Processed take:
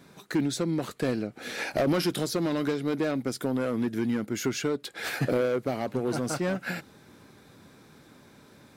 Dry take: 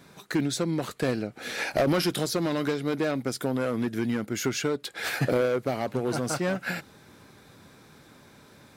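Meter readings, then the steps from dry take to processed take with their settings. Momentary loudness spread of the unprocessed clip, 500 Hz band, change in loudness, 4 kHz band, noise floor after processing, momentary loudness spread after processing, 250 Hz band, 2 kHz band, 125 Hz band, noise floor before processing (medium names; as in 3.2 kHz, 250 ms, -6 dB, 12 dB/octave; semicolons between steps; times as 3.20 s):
6 LU, -1.5 dB, -1.0 dB, -2.5 dB, -55 dBFS, 6 LU, +0.5 dB, -2.5 dB, -1.5 dB, -54 dBFS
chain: peaking EQ 270 Hz +3.5 dB 1.6 oct; in parallel at -9.5 dB: overload inside the chain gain 21.5 dB; on the sum: trim -5 dB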